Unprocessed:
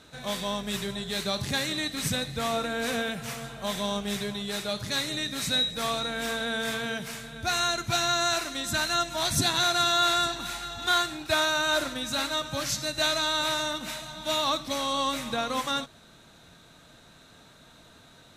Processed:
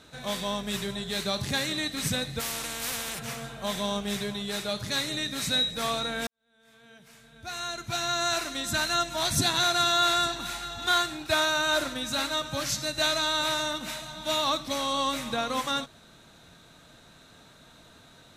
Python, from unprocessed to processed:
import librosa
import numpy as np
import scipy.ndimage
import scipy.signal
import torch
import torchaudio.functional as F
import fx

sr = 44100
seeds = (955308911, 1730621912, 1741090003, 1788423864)

y = fx.spectral_comp(x, sr, ratio=4.0, at=(2.39, 3.18), fade=0.02)
y = fx.edit(y, sr, fx.fade_in_span(start_s=6.27, length_s=2.17, curve='qua'), tone=tone)